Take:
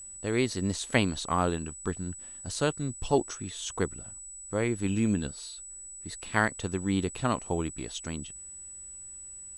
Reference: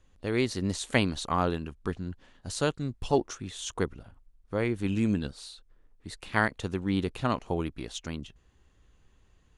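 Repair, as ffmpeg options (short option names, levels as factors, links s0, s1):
-af "bandreject=f=7900:w=30"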